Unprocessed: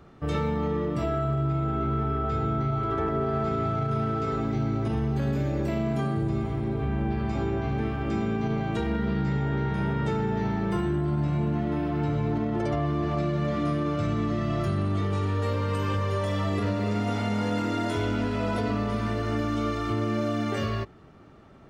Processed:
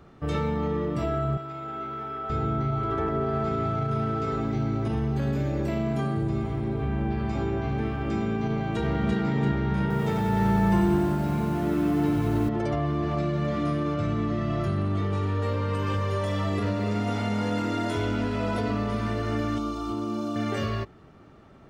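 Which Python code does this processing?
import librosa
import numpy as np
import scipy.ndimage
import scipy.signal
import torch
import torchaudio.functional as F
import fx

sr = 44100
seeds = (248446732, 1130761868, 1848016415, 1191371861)

y = fx.highpass(x, sr, hz=900.0, slope=6, at=(1.37, 2.3))
y = fx.echo_throw(y, sr, start_s=8.49, length_s=0.68, ms=340, feedback_pct=50, wet_db=-2.0)
y = fx.echo_crushed(y, sr, ms=92, feedback_pct=80, bits=8, wet_db=-5, at=(9.81, 12.49))
y = fx.high_shelf(y, sr, hz=4800.0, db=-6.0, at=(13.94, 15.87))
y = fx.fixed_phaser(y, sr, hz=510.0, stages=6, at=(19.58, 20.36))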